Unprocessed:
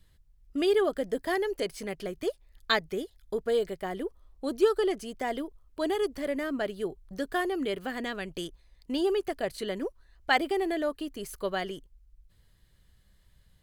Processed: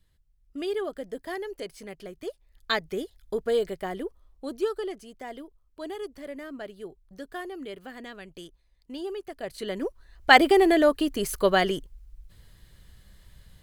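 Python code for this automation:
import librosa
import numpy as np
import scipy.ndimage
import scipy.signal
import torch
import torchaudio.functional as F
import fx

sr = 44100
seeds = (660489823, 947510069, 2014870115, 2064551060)

y = fx.gain(x, sr, db=fx.line((2.21, -5.5), (3.03, 2.0), (3.82, 2.0), (5.06, -7.5), (9.28, -7.5), (9.63, 0.0), (10.39, 10.0)))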